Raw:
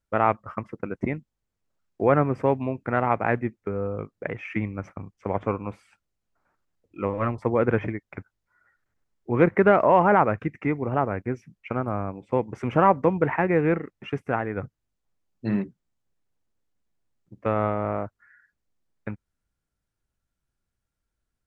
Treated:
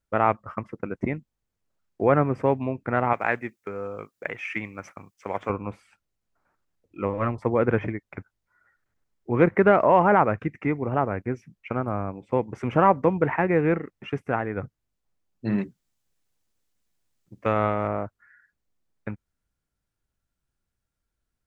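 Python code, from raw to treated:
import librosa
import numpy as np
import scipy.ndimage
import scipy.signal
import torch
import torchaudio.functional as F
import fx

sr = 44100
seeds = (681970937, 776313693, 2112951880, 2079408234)

y = fx.tilt_eq(x, sr, slope=3.5, at=(3.13, 5.5))
y = fx.high_shelf(y, sr, hz=2100.0, db=10.0, at=(15.58, 17.88))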